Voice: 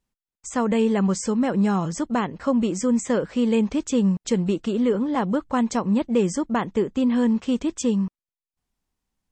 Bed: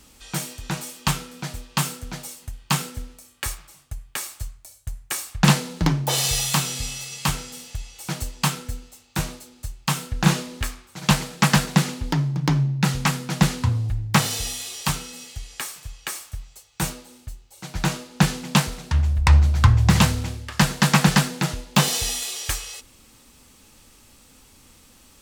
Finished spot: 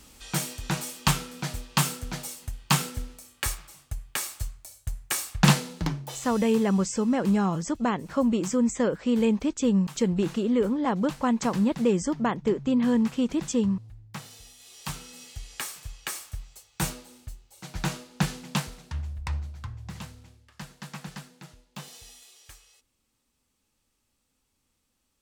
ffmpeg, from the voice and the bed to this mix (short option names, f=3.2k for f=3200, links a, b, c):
-filter_complex "[0:a]adelay=5700,volume=-2.5dB[a];[1:a]volume=18dB,afade=t=out:st=5.25:d=0.94:silence=0.0891251,afade=t=in:st=14.57:d=1.04:silence=0.11885,afade=t=out:st=16.93:d=2.73:silence=0.0944061[b];[a][b]amix=inputs=2:normalize=0"